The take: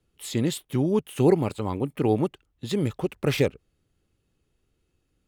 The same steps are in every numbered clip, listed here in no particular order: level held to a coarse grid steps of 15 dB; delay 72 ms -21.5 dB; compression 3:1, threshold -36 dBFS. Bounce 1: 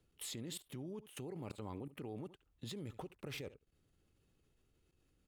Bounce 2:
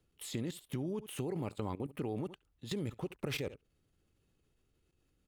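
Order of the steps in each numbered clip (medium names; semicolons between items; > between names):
delay > compression > level held to a coarse grid; delay > level held to a coarse grid > compression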